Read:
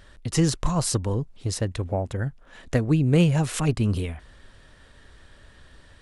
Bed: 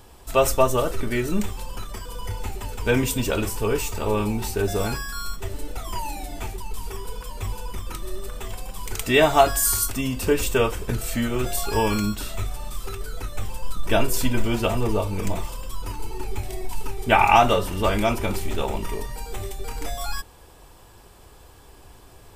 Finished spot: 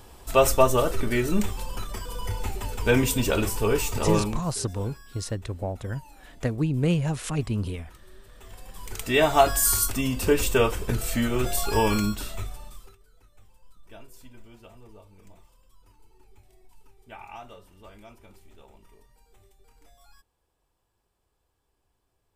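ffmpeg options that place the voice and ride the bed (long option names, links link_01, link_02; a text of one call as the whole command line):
ffmpeg -i stem1.wav -i stem2.wav -filter_complex "[0:a]adelay=3700,volume=-4.5dB[link_01];[1:a]volume=19dB,afade=type=out:start_time=4.14:duration=0.3:silence=0.105925,afade=type=in:start_time=8.29:duration=1.39:silence=0.112202,afade=type=out:start_time=11.97:duration=1:silence=0.0473151[link_02];[link_01][link_02]amix=inputs=2:normalize=0" out.wav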